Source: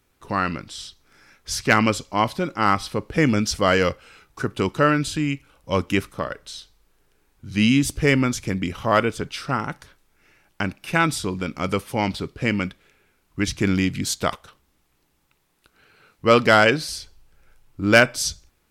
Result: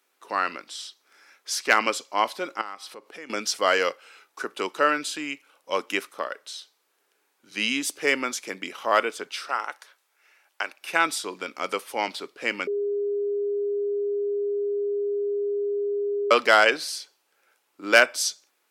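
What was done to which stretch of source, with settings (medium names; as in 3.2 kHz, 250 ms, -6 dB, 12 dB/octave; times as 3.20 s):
2.61–3.30 s: compression 3:1, threshold -36 dBFS
9.48–10.81 s: high-pass 520 Hz
12.67–16.31 s: bleep 407 Hz -17.5 dBFS
whole clip: Bessel high-pass 500 Hz, order 4; trim -1 dB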